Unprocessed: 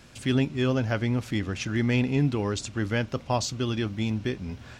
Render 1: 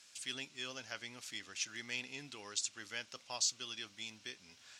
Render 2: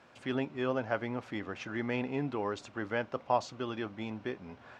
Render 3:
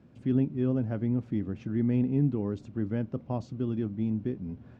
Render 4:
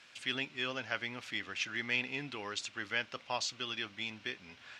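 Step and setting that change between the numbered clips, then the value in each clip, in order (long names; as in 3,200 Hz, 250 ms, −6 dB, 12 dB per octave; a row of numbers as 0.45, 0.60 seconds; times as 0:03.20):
resonant band-pass, frequency: 6,800, 860, 210, 2,600 Hertz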